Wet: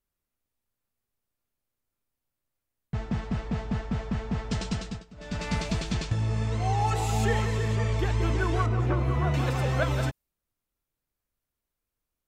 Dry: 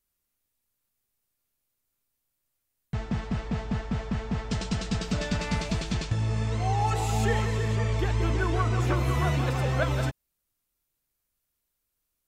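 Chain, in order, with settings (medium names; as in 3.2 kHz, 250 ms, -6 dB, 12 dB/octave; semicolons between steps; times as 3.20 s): 4.57–5.64 s: dip -20.5 dB, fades 0.48 s equal-power; 8.66–9.34 s: low-pass 1.4 kHz 6 dB/octave; tape noise reduction on one side only decoder only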